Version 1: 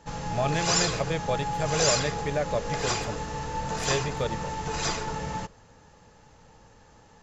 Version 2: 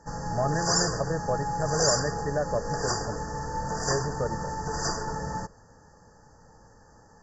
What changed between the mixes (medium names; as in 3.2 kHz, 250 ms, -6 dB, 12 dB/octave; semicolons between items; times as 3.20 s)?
speech: add boxcar filter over 7 samples; master: add brick-wall FIR band-stop 1.9–4.5 kHz